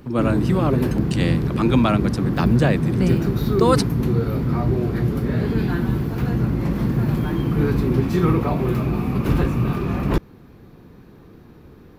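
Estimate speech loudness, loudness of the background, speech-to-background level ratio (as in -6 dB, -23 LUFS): -22.0 LUFS, -21.5 LUFS, -0.5 dB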